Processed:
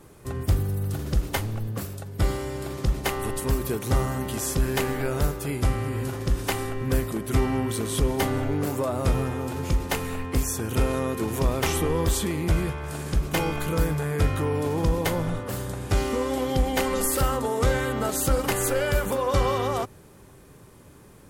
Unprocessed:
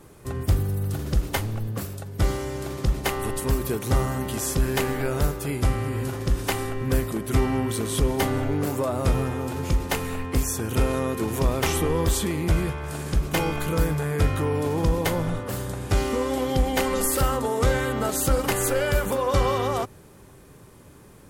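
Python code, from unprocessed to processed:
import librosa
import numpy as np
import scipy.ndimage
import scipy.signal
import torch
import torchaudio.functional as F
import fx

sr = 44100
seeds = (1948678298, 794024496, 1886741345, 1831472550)

y = fx.notch(x, sr, hz=6100.0, q=9.0, at=(2.14, 2.74))
y = F.gain(torch.from_numpy(y), -1.0).numpy()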